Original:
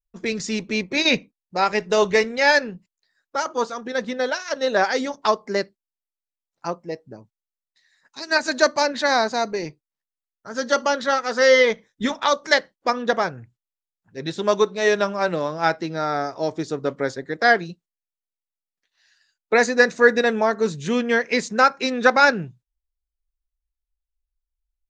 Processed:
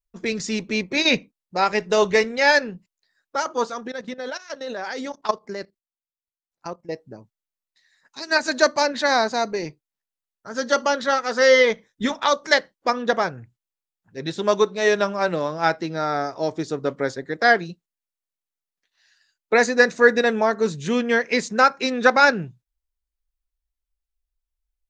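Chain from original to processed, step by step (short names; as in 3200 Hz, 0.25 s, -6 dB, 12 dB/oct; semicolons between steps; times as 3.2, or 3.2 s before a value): 3.87–6.89 level quantiser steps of 15 dB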